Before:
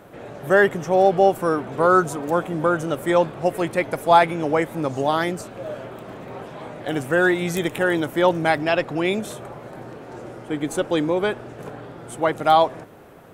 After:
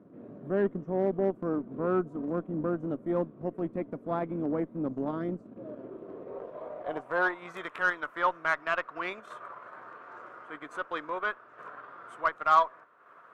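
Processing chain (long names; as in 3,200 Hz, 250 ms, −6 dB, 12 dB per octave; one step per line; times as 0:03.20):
band-pass filter sweep 240 Hz → 1,300 Hz, 0:05.52–0:07.67
transient designer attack −4 dB, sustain −8 dB
notch filter 820 Hz, Q 5.2
harmonic generator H 6 −28 dB, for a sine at −15.5 dBFS
parametric band 1,100 Hz +5.5 dB 0.73 octaves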